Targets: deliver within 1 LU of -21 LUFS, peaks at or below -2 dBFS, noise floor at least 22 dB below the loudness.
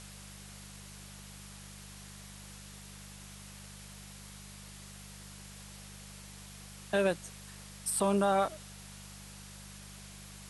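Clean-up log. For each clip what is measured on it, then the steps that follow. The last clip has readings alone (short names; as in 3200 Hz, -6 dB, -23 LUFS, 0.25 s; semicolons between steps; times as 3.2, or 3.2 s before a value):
hum 50 Hz; harmonics up to 200 Hz; hum level -50 dBFS; noise floor -50 dBFS; noise floor target -61 dBFS; loudness -38.5 LUFS; peak -16.0 dBFS; loudness target -21.0 LUFS
-> de-hum 50 Hz, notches 4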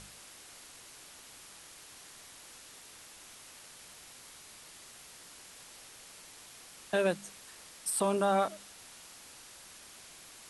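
hum none; noise floor -53 dBFS; noise floor target -54 dBFS
-> noise print and reduce 6 dB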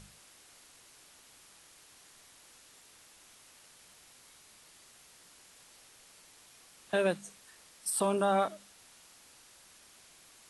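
noise floor -59 dBFS; loudness -31.5 LUFS; peak -16.0 dBFS; loudness target -21.0 LUFS
-> gain +10.5 dB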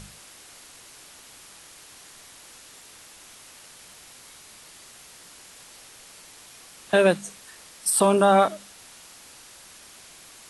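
loudness -21.0 LUFS; peak -5.5 dBFS; noise floor -49 dBFS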